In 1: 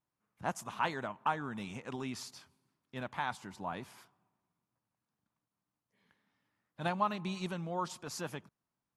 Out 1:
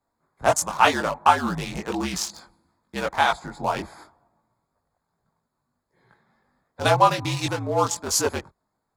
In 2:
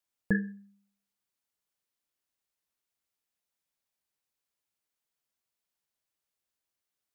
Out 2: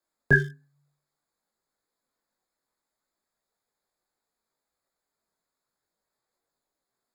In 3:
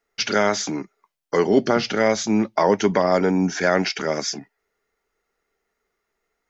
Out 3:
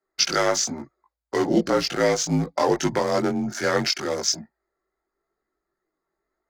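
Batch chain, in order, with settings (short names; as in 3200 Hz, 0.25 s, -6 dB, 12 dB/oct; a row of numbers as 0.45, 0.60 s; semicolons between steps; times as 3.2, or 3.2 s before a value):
Wiener smoothing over 15 samples; tone controls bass -8 dB, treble +11 dB; chorus voices 4, 0.59 Hz, delay 20 ms, depth 2.2 ms; frequency shift -56 Hz; match loudness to -23 LUFS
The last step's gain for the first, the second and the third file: +19.5, +14.5, +1.5 dB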